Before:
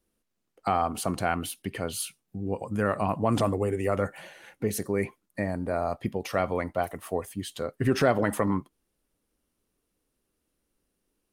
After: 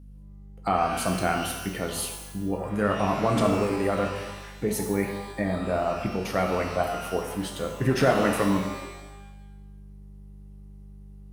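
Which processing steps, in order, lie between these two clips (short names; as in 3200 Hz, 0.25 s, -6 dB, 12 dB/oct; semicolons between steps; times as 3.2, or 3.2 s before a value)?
hum 50 Hz, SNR 17 dB; shimmer reverb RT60 1 s, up +12 st, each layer -8 dB, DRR 2 dB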